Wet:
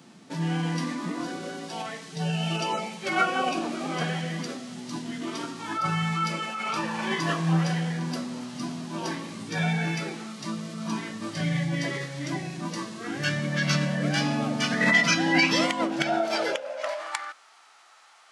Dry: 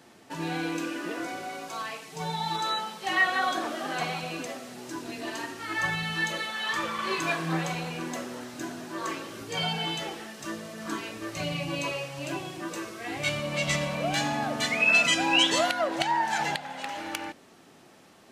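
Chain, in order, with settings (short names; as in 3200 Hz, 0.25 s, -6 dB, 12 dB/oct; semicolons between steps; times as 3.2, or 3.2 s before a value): tone controls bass +2 dB, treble +4 dB; high-pass sweep 170 Hz -> 1500 Hz, 15.98–17.21; formant shift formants -5 st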